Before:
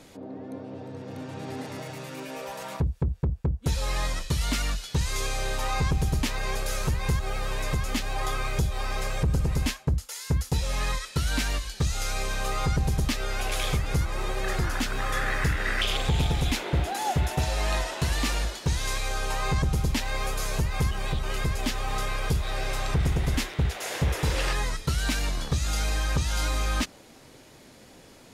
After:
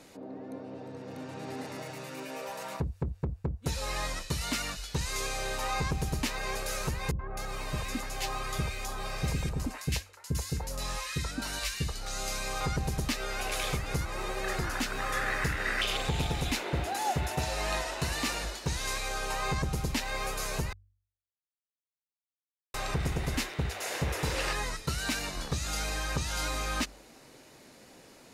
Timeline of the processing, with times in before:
7.11–12.61 three bands offset in time lows, mids, highs 80/260 ms, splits 490/1600 Hz
20.73–22.74 mute
whole clip: low shelf 140 Hz -7.5 dB; notch 3300 Hz, Q 14; de-hum 47.83 Hz, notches 2; gain -2 dB

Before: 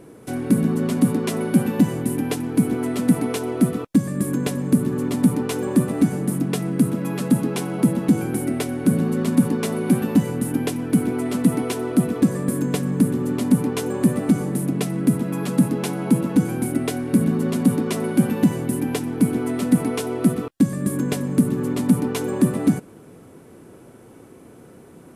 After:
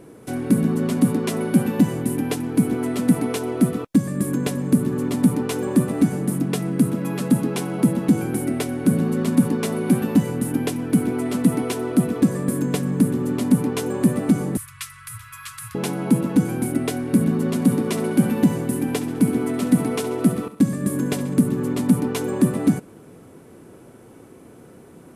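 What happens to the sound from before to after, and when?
14.57–15.75 Chebyshev band-stop 110–1100 Hz, order 5
17.55–21.34 feedback echo 68 ms, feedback 56%, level -14 dB

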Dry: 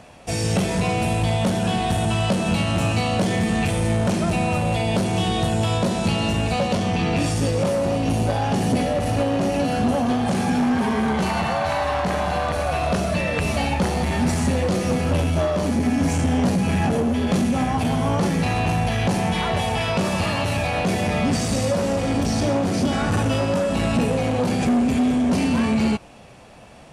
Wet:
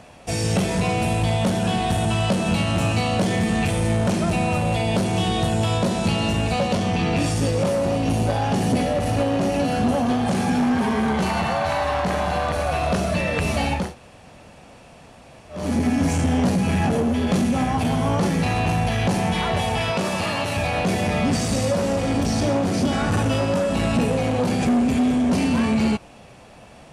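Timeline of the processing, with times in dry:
13.84–15.61 room tone, crossfade 0.24 s
19.91–20.57 low shelf 120 Hz -11 dB

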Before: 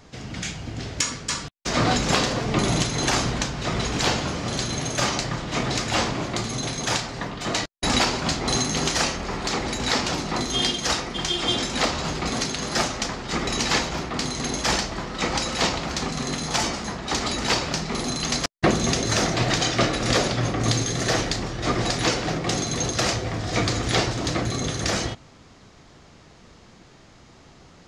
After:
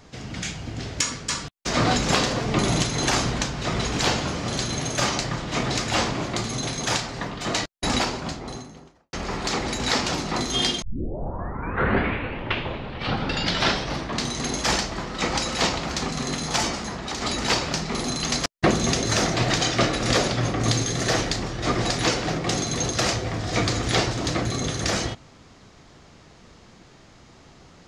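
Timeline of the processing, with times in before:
7.59–9.13 studio fade out
10.82 tape start 3.61 s
16.76–17.22 compressor 5:1, threshold -26 dBFS

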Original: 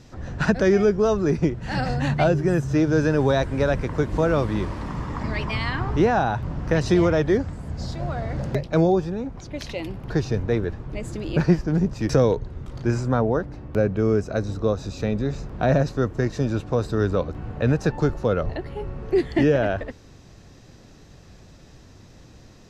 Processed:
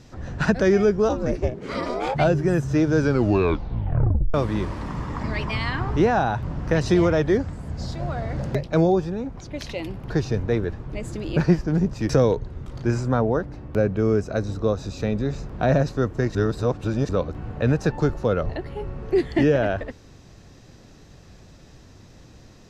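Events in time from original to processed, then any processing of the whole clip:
1.08–2.14 ring modulator 130 Hz -> 700 Hz
2.98 tape stop 1.36 s
16.35–17.09 reverse

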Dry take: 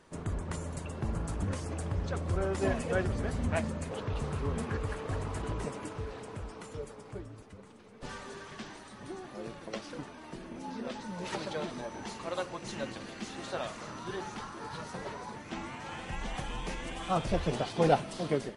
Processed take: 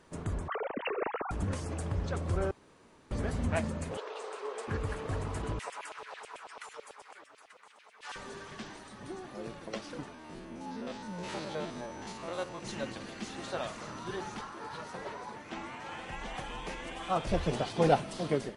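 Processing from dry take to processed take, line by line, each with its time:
0.48–1.31 sine-wave speech
2.51–3.11 room tone
3.97–4.68 Chebyshev band-pass 400–9000 Hz, order 4
5.59–8.16 LFO high-pass saw down 9.1 Hz 610–3100 Hz
10.14–12.6 stepped spectrum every 50 ms
14.41–17.27 tone controls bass -7 dB, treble -4 dB

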